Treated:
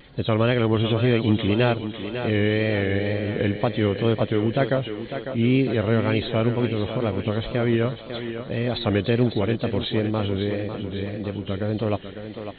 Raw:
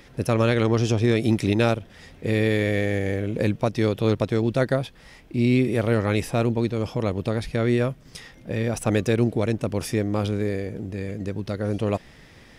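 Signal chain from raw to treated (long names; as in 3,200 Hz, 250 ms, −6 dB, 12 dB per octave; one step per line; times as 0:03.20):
hearing-aid frequency compression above 2,900 Hz 4 to 1
tape wow and flutter 86 cents
feedback echo with a high-pass in the loop 550 ms, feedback 57%, high-pass 170 Hz, level −8.5 dB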